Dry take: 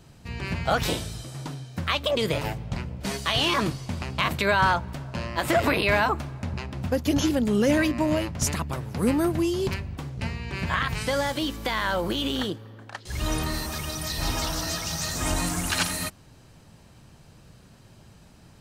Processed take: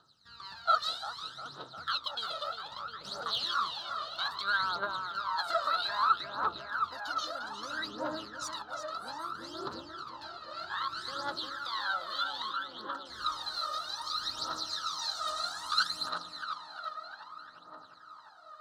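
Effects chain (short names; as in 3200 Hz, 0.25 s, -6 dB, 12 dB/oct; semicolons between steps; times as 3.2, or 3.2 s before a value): double band-pass 2300 Hz, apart 1.6 oct; tape echo 0.352 s, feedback 87%, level -3.5 dB, low-pass 3000 Hz; phaser 0.62 Hz, delay 1.7 ms, feedback 75%; gain -1 dB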